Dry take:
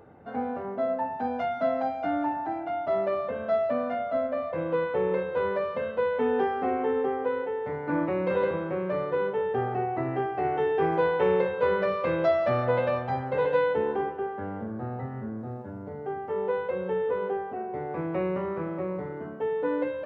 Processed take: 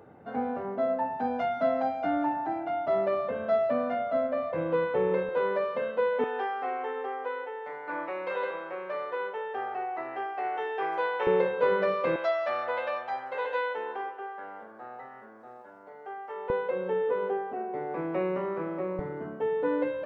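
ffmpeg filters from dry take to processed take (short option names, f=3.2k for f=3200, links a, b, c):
-af "asetnsamples=n=441:p=0,asendcmd='5.29 highpass f 220;6.24 highpass f 710;11.27 highpass f 190;12.16 highpass f 780;16.5 highpass f 220;18.99 highpass f 98',highpass=96"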